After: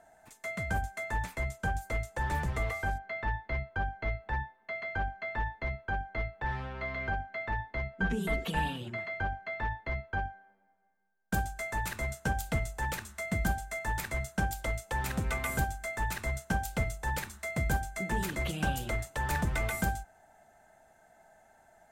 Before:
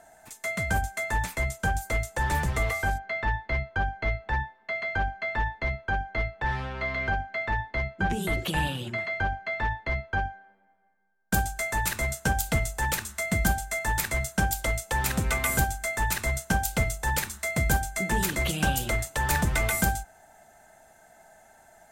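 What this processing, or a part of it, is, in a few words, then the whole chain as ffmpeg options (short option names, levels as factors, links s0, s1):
behind a face mask: -filter_complex "[0:a]asettb=1/sr,asplit=3[s0][s1][s2];[s0]atrim=end=7.934[s3];[s1]atrim=start=7.93:end=8.78,asetpts=PTS-STARTPTS,afade=t=in:d=0.004:c=qsin,afade=t=out:st=0.846:d=0.004:c=qsin,aecho=1:1:4.4:0.73,atrim=end_sample=37485[s4];[s2]atrim=start=8.776[s5];[s3][s4]acrossfade=d=0.004:c1=hsin:c2=qsin[s6];[s6][s5]acrossfade=d=0.004:c1=qsin:c2=hsin,highshelf=f=3400:g=-7.5,volume=0.562"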